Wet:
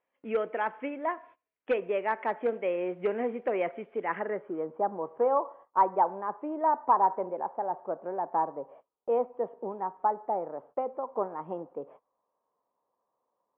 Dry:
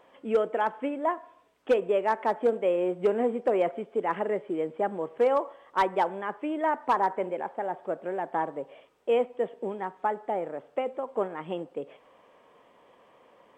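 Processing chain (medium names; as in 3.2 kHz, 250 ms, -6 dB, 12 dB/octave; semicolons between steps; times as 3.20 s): gate -49 dBFS, range -22 dB; low-pass sweep 2.3 kHz -> 1 kHz, 4.02–4.78 s; trim -5 dB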